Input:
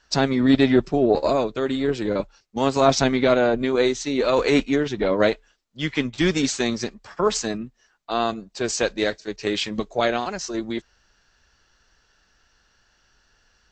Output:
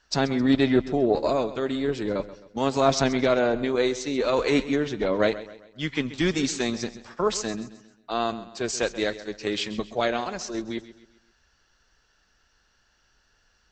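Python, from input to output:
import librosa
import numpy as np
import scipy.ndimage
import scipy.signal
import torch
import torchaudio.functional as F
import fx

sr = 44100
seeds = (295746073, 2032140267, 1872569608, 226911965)

y = fx.echo_feedback(x, sr, ms=132, feedback_pct=42, wet_db=-15.5)
y = F.gain(torch.from_numpy(y), -3.5).numpy()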